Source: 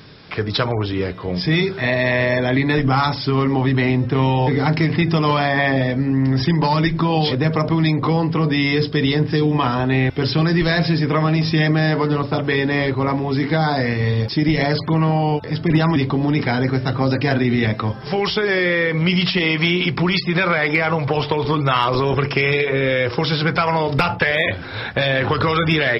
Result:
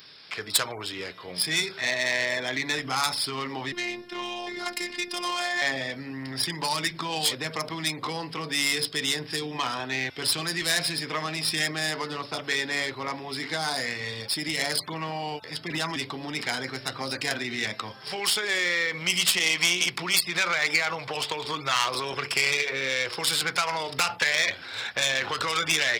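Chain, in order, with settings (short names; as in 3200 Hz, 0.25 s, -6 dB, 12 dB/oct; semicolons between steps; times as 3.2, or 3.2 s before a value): tracing distortion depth 0.083 ms; 3.72–5.62 robotiser 354 Hz; tilt +4.5 dB/oct; gain -9.5 dB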